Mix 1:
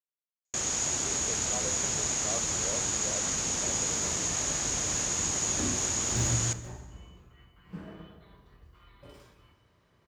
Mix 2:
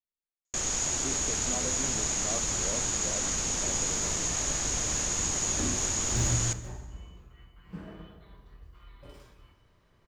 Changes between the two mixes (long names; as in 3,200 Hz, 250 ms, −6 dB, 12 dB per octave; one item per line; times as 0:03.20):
speech: remove linear-phase brick-wall high-pass 380 Hz
master: remove high-pass filter 69 Hz 12 dB per octave